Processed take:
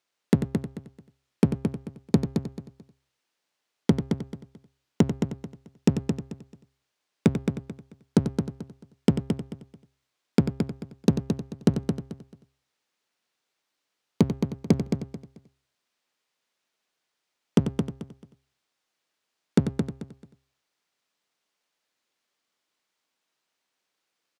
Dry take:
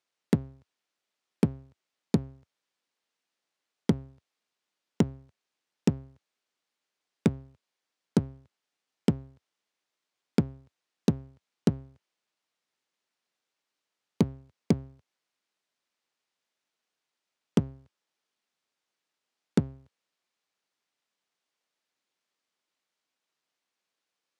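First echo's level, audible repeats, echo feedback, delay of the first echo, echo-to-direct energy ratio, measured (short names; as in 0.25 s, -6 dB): -10.0 dB, 6, no steady repeat, 92 ms, -4.5 dB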